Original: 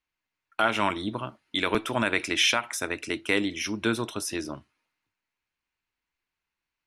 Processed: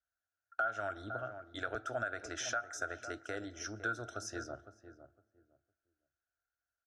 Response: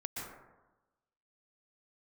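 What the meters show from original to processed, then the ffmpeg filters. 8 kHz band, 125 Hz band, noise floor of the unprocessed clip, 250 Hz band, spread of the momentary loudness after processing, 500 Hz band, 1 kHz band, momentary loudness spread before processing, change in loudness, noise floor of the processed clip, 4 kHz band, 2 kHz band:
-10.5 dB, -11.0 dB, under -85 dBFS, -17.5 dB, 9 LU, -11.0 dB, -10.0 dB, 12 LU, -13.0 dB, under -85 dBFS, -20.0 dB, -10.5 dB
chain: -filter_complex "[0:a]highpass=42,alimiter=limit=-12.5dB:level=0:latency=1:release=297,firequalizer=gain_entry='entry(110,0);entry(160,-21);entry(270,-10);entry(410,-7);entry(700,6);entry(1000,-24);entry(1400,10);entry(2200,-20);entry(6300,-1);entry(10000,-20)':delay=0.05:min_phase=1,asplit=2[a][b];[b]adelay=508,lowpass=f=860:p=1,volume=-11dB,asplit=2[c][d];[d]adelay=508,lowpass=f=860:p=1,volume=0.21,asplit=2[e][f];[f]adelay=508,lowpass=f=860:p=1,volume=0.21[g];[a][c][e][g]amix=inputs=4:normalize=0,asplit=2[h][i];[1:a]atrim=start_sample=2205[j];[i][j]afir=irnorm=-1:irlink=0,volume=-23dB[k];[h][k]amix=inputs=2:normalize=0,acompressor=threshold=-29dB:ratio=2.5,volume=-5.5dB"

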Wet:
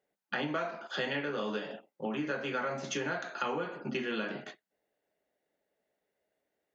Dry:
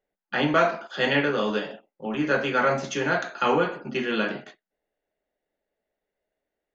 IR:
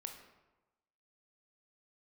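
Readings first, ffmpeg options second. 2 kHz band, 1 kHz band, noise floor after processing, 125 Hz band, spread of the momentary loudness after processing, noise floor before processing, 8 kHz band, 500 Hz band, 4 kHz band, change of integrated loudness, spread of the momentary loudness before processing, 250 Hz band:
-10.5 dB, -11.5 dB, under -85 dBFS, -10.5 dB, 6 LU, under -85 dBFS, n/a, -11.0 dB, -8.5 dB, -10.5 dB, 9 LU, -9.5 dB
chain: -af "highpass=88,acompressor=threshold=-33dB:ratio=6,volume=1dB"

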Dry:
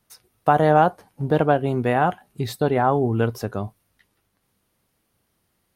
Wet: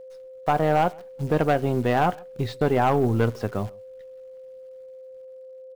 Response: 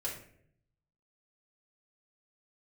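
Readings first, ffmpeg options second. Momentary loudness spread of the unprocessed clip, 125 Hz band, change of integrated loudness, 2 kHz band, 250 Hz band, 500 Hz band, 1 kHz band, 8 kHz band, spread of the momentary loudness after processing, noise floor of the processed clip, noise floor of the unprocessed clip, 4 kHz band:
14 LU, -1.5 dB, -2.5 dB, -2.5 dB, -2.0 dB, -2.5 dB, -3.5 dB, n/a, 23 LU, -43 dBFS, -72 dBFS, -1.0 dB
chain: -filter_complex "[0:a]aeval=exprs='if(lt(val(0),0),0.708*val(0),val(0))':c=same,lowpass=3.9k,dynaudnorm=f=250:g=9:m=5dB,acrusher=bits=8:dc=4:mix=0:aa=0.000001,volume=11dB,asoftclip=hard,volume=-11dB,asplit=2[a][b];[b]adelay=134.1,volume=-27dB,highshelf=f=4k:g=-3.02[c];[a][c]amix=inputs=2:normalize=0,aeval=exprs='val(0)+0.0141*sin(2*PI*520*n/s)':c=same,volume=-3dB"

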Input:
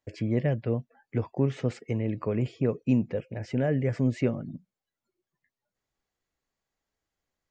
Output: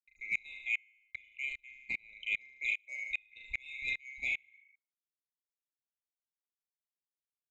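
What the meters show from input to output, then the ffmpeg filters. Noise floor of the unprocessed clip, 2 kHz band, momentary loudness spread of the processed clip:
under -85 dBFS, +10.0 dB, 7 LU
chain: -filter_complex "[0:a]afftfilt=real='real(if(lt(b,920),b+92*(1-2*mod(floor(b/92),2)),b),0)':imag='imag(if(lt(b,920),b+92*(1-2*mod(floor(b/92),2)),b),0)':win_size=2048:overlap=0.75,bandreject=f=3.2k:w=17,anlmdn=2.51,asplit=2[a][b];[b]adelay=38,volume=-5dB[c];[a][c]amix=inputs=2:normalize=0,acontrast=49,equalizer=f=140:t=o:w=1.7:g=-2.5,agate=range=-39dB:threshold=-48dB:ratio=16:detection=peak,equalizer=f=125:t=o:w=1:g=-10,equalizer=f=250:t=o:w=1:g=-8,equalizer=f=500:t=o:w=1:g=-5,equalizer=f=1k:t=o:w=1:g=-11,equalizer=f=2k:t=o:w=1:g=-11,equalizer=f=4k:t=o:w=1:g=3,aecho=1:1:75|150|225|300:0.316|0.117|0.0433|0.016,aeval=exprs='val(0)*pow(10,-32*if(lt(mod(-2.5*n/s,1),2*abs(-2.5)/1000),1-mod(-2.5*n/s,1)/(2*abs(-2.5)/1000),(mod(-2.5*n/s,1)-2*abs(-2.5)/1000)/(1-2*abs(-2.5)/1000))/20)':c=same"

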